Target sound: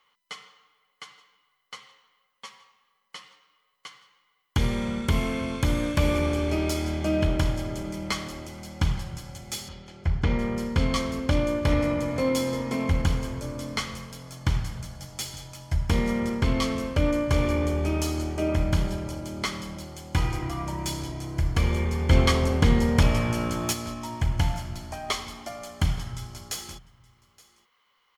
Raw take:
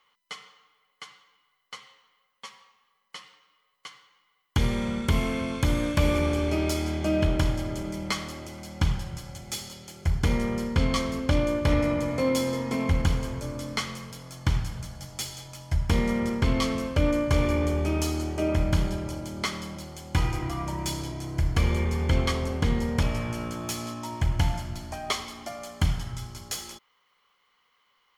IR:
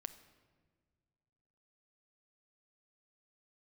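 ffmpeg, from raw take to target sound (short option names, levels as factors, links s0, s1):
-filter_complex "[0:a]asplit=3[s0][s1][s2];[s0]afade=t=out:st=9.68:d=0.02[s3];[s1]lowpass=3500,afade=t=in:st=9.68:d=0.02,afade=t=out:st=10.55:d=0.02[s4];[s2]afade=t=in:st=10.55:d=0.02[s5];[s3][s4][s5]amix=inputs=3:normalize=0,asplit=3[s6][s7][s8];[s6]afade=t=out:st=22.09:d=0.02[s9];[s7]acontrast=33,afade=t=in:st=22.09:d=0.02,afade=t=out:st=23.72:d=0.02[s10];[s8]afade=t=in:st=23.72:d=0.02[s11];[s9][s10][s11]amix=inputs=3:normalize=0,aecho=1:1:871:0.075"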